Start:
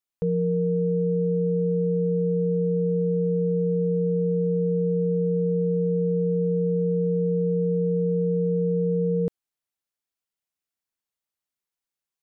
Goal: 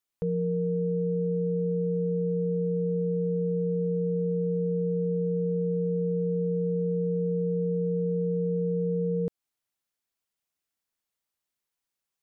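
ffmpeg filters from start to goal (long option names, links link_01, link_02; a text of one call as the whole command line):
ffmpeg -i in.wav -af "alimiter=limit=-24dB:level=0:latency=1:release=164,volume=2.5dB" out.wav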